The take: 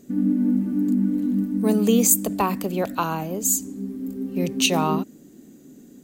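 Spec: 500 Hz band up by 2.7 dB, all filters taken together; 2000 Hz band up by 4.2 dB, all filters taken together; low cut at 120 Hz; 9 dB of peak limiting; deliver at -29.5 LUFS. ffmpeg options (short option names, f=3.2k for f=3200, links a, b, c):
-af "highpass=120,equalizer=f=500:t=o:g=3,equalizer=f=2k:t=o:g=6.5,volume=-6.5dB,alimiter=limit=-18dB:level=0:latency=1"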